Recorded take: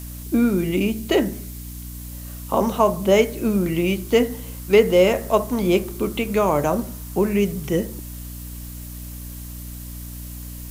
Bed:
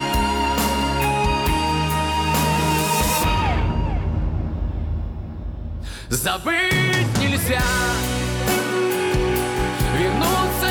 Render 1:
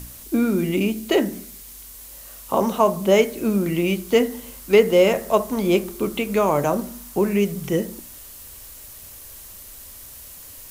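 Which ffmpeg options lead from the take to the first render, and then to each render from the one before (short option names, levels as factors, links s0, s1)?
-af "bandreject=f=60:t=h:w=4,bandreject=f=120:t=h:w=4,bandreject=f=180:t=h:w=4,bandreject=f=240:t=h:w=4,bandreject=f=300:t=h:w=4"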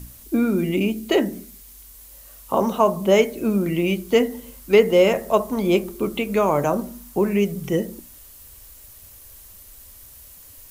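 -af "afftdn=nr=6:nf=-41"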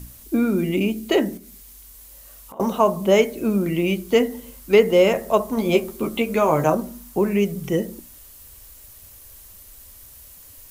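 -filter_complex "[0:a]asettb=1/sr,asplit=3[s0][s1][s2];[s0]atrim=end=1.374[s3];[s1]atrim=start=1.37:end=2.6,asetpts=PTS-STARTPTS,afade=t=in:d=0.004:c=qsin,afade=t=out:st=1.226:d=0.004:c=qsin,acompressor=threshold=0.0112:ratio=6:attack=3.2:release=140:knee=1:detection=peak[s4];[s2]atrim=start=2.596[s5];[s3][s4]acrossfade=d=0.004:c1=hsin:c2=qsin[s6];[s6][s5]acrossfade=d=0.004:c1=qsin:c2=hsin,asettb=1/sr,asplit=3[s7][s8][s9];[s7]atrim=end=5.564[s10];[s8]atrim=start=5.56:end=6.75,asetpts=PTS-STARTPTS,afade=t=in:d=0.004:c=qsin,afade=t=out:st=1.186:d=0.004:c=qsin,asplit=2[s11][s12];[s12]adelay=13,volume=0.596[s13];[s11][s13]amix=inputs=2:normalize=0,atrim=end_sample=52479[s14];[s9]atrim=start=6.746[s15];[s10][s14]acrossfade=d=0.004:c1=hsin:c2=qsin[s16];[s16][s15]acrossfade=d=0.004:c1=qsin:c2=hsin"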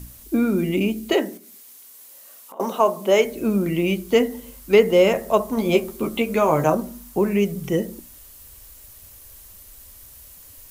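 -filter_complex "[0:a]asettb=1/sr,asplit=3[s0][s1][s2];[s0]atrim=end=1.134[s3];[s1]atrim=start=1.13:end=3.25,asetpts=PTS-STARTPTS,afade=t=in:d=0.004:c=qsin,afade=t=out:st=2.116:d=0.004:c=qsin,highpass=310[s4];[s2]atrim=start=3.246[s5];[s3][s4]acrossfade=d=0.004:c1=hsin:c2=qsin[s6];[s6][s5]acrossfade=d=0.004:c1=qsin:c2=hsin"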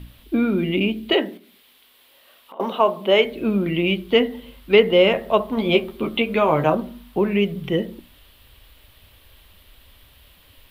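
-af "highshelf=f=4700:t=q:w=3:g=-12.5"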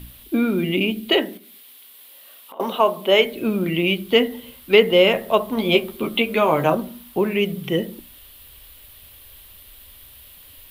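-af "equalizer=f=13000:w=0.37:g=13.5,bandreject=f=50:t=h:w=6,bandreject=f=100:t=h:w=6,bandreject=f=150:t=h:w=6,bandreject=f=200:t=h:w=6"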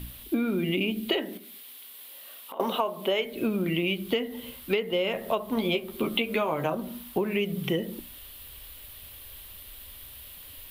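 -af "acompressor=threshold=0.0708:ratio=16"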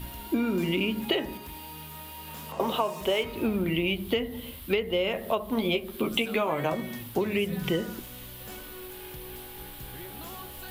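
-filter_complex "[1:a]volume=0.0631[s0];[0:a][s0]amix=inputs=2:normalize=0"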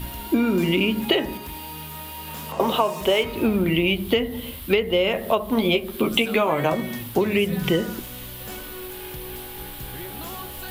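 -af "volume=2.11"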